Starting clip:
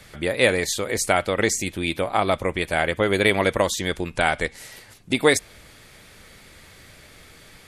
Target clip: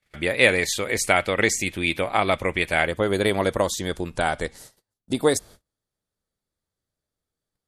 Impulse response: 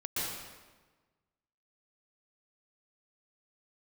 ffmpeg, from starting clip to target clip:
-af "asetnsamples=n=441:p=0,asendcmd='2.87 equalizer g -7.5;4.58 equalizer g -14.5',equalizer=f=2.3k:t=o:w=0.92:g=5.5,agate=range=-35dB:threshold=-42dB:ratio=16:detection=peak,volume=-1dB"

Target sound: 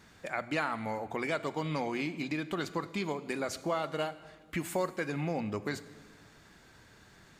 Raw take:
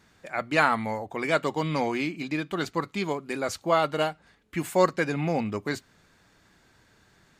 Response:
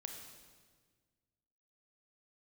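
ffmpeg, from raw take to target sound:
-filter_complex "[0:a]acompressor=threshold=-36dB:ratio=3,asplit=2[a][b];[1:a]atrim=start_sample=2205[c];[b][c]afir=irnorm=-1:irlink=0,volume=-4dB[d];[a][d]amix=inputs=2:normalize=0"

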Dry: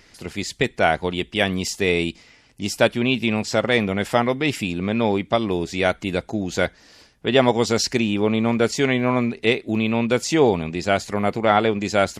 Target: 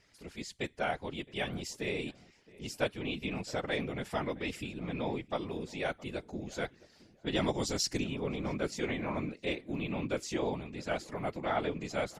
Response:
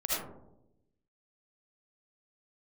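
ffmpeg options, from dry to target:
-filter_complex "[0:a]asettb=1/sr,asplit=3[a][b][c];[a]atrim=end=7.264[d];[b]atrim=start=7.26:end=8.04,asetpts=PTS-STARTPTS,afade=t=in:d=0.004:c=qsin,afade=t=out:st=0.776:d=0.004:c=qsin,bass=f=250:g=5,treble=f=4k:g=8[e];[c]atrim=start=8.036[f];[d][e]acrossfade=d=0.004:c1=hsin:c2=qsin[g];[g][f]acrossfade=d=0.004:c1=qsin:c2=hsin,afftfilt=real='hypot(re,im)*cos(2*PI*random(0))':imag='hypot(re,im)*sin(2*PI*random(1))':win_size=512:overlap=0.75,asplit=2[h][i];[i]adelay=666,lowpass=f=1.8k:p=1,volume=-21dB,asplit=2[j][k];[k]adelay=666,lowpass=f=1.8k:p=1,volume=0.23[l];[h][j][l]amix=inputs=3:normalize=0,volume=-9dB"

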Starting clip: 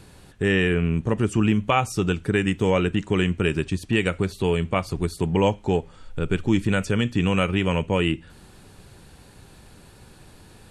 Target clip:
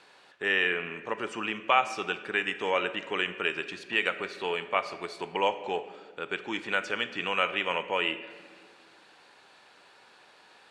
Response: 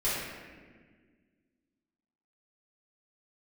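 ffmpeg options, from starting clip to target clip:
-filter_complex "[0:a]highpass=720,lowpass=4.1k,asplit=2[a][b];[1:a]atrim=start_sample=2205,adelay=33[c];[b][c]afir=irnorm=-1:irlink=0,volume=-21dB[d];[a][d]amix=inputs=2:normalize=0"

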